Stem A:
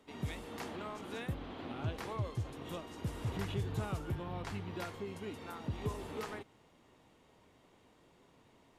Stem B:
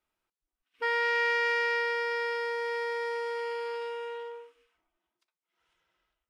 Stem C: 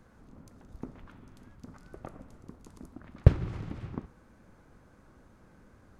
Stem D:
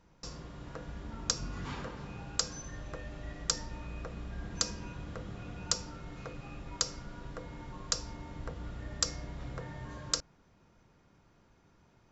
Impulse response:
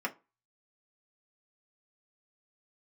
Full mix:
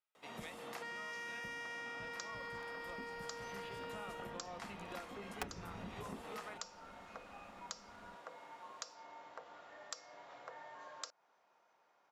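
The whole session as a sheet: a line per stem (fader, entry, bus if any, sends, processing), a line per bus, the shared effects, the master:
+1.0 dB, 0.15 s, bus A, send -14 dB, octave divider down 1 oct, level -1 dB
-12.0 dB, 0.00 s, bus A, no send, peaking EQ 2.3 kHz +6 dB 2.7 oct; waveshaping leveller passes 2
-5.5 dB, 2.15 s, no bus, send -3.5 dB, integer overflow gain 11.5 dB
-5.0 dB, 0.90 s, no bus, no send, resonant high-pass 730 Hz, resonance Q 1.8; treble shelf 6.4 kHz -8.5 dB
bus A: 0.0 dB, high-pass 450 Hz 24 dB/octave; peak limiter -29.5 dBFS, peak gain reduction 8.5 dB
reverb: on, RT60 0.30 s, pre-delay 3 ms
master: compression 3:1, threshold -45 dBFS, peak gain reduction 16.5 dB

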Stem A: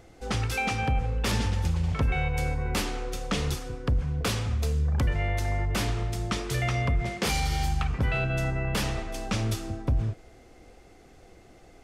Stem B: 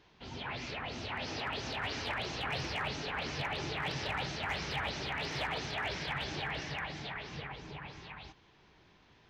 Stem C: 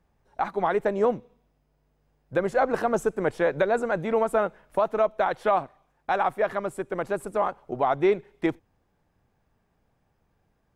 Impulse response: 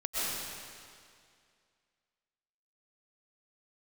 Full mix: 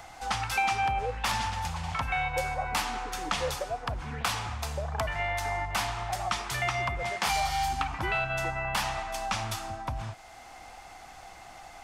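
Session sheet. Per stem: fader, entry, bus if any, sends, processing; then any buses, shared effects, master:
+0.5 dB, 0.00 s, no send, resonant low shelf 600 Hz -11 dB, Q 3
-8.0 dB, 0.00 s, no send, wah-wah 1 Hz 740–1800 Hz, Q 2.9
-7.0 dB, 0.00 s, no send, stepped vowel filter 3.3 Hz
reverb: none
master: three bands compressed up and down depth 40%

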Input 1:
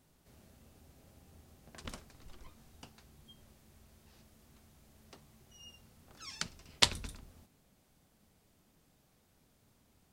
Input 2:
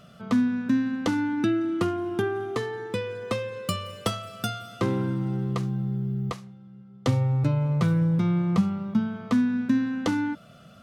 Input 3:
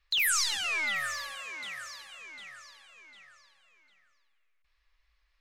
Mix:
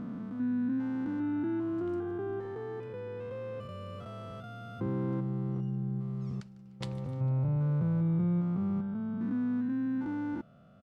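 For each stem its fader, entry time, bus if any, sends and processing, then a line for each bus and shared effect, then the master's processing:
-14.0 dB, 0.00 s, no send, echo send -21 dB, none
-5.0 dB, 0.00 s, no send, no echo send, spectrogram pixelated in time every 400 ms; treble shelf 2.1 kHz -9.5 dB
mute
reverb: none
echo: feedback delay 150 ms, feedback 51%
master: treble shelf 2.7 kHz -10 dB

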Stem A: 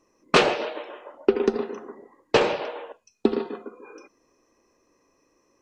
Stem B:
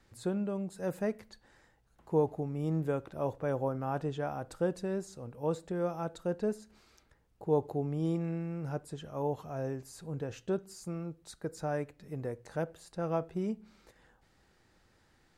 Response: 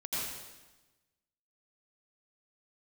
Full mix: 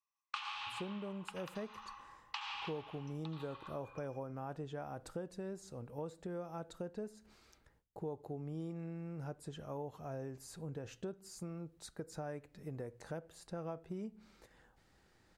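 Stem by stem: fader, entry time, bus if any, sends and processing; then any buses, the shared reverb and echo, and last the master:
-2.0 dB, 0.00 s, send -6 dB, gate with hold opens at -46 dBFS; compression, threshold -22 dBFS, peak gain reduction 10 dB; rippled Chebyshev high-pass 800 Hz, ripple 9 dB
-2.0 dB, 0.55 s, no send, gate with hold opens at -60 dBFS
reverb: on, RT60 1.1 s, pre-delay 77 ms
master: compression 4:1, threshold -41 dBFS, peak gain reduction 14 dB

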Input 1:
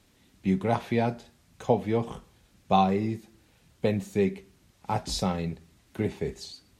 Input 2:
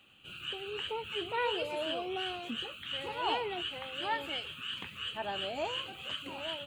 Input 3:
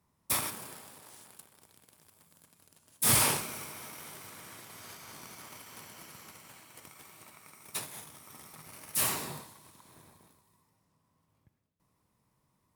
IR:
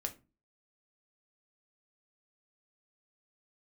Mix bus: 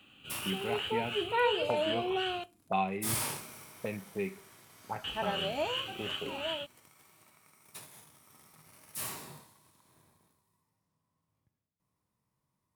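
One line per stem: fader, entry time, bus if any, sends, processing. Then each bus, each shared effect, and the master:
-8.0 dB, 0.00 s, no send, bass shelf 170 Hz -9 dB; touch-sensitive low-pass 290–2600 Hz up, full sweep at -23.5 dBFS
+2.0 dB, 0.00 s, muted 2.44–5.04 s, send -8 dB, none
-6.0 dB, 0.00 s, no send, none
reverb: on, RT60 0.30 s, pre-delay 5 ms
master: harmonic-percussive split percussive -6 dB

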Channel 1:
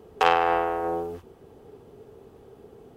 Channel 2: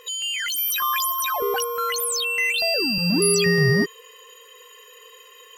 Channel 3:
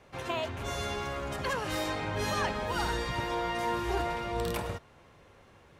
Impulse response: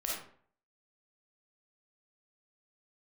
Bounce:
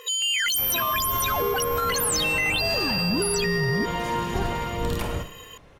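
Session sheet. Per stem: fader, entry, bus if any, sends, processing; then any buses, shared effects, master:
-6.0 dB, 2.25 s, no send, overload inside the chain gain 11.5 dB; compression, threshold -26 dBFS, peak gain reduction 9.5 dB
+3.0 dB, 0.00 s, no send, high-pass 62 Hz
+1.5 dB, 0.45 s, send -9 dB, octave divider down 1 oct, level +2 dB; band-stop 7.8 kHz, Q 27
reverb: on, RT60 0.55 s, pre-delay 10 ms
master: peak limiter -15.5 dBFS, peak gain reduction 11 dB

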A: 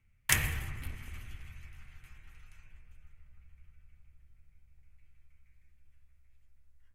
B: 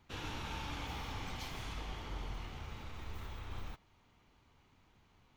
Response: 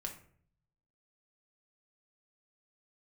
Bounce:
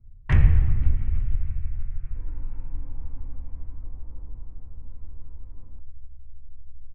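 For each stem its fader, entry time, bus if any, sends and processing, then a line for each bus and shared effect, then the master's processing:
+1.5 dB, 0.00 s, no send, low-pass 2.5 kHz 12 dB/octave
-19.0 dB, 2.05 s, no send, inverse Chebyshev low-pass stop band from 7.6 kHz, stop band 60 dB; small resonant body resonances 270/510/990 Hz, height 9 dB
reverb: none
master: level-controlled noise filter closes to 820 Hz, open at -35.5 dBFS; tilt EQ -4.5 dB/octave

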